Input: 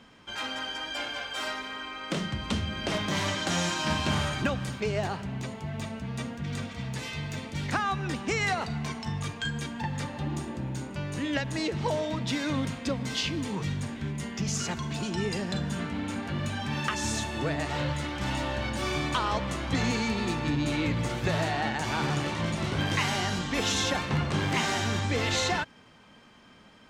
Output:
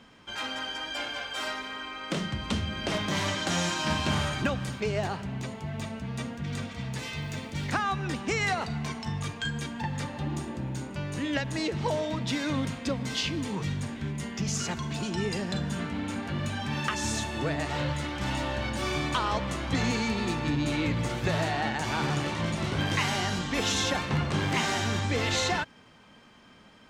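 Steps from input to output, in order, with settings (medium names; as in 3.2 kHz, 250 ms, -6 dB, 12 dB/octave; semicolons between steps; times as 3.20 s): 6.94–7.72 s: crackle 480 per s -49 dBFS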